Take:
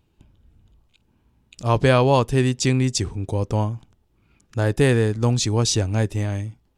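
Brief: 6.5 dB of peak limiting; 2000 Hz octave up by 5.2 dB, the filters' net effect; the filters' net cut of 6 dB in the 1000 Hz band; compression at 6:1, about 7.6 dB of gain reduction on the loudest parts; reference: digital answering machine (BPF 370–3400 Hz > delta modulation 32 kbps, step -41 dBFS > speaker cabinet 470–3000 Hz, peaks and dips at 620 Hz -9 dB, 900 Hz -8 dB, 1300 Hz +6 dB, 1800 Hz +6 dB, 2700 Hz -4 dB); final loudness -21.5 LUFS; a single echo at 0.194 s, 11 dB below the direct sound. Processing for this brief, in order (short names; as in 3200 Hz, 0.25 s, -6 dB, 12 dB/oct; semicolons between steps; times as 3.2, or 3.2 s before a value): bell 1000 Hz -5 dB; bell 2000 Hz +4 dB; compressor 6:1, threshold -20 dBFS; limiter -16.5 dBFS; BPF 370–3400 Hz; echo 0.194 s -11 dB; delta modulation 32 kbps, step -41 dBFS; speaker cabinet 470–3000 Hz, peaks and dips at 620 Hz -9 dB, 900 Hz -8 dB, 1300 Hz +6 dB, 1800 Hz +6 dB, 2700 Hz -4 dB; gain +17.5 dB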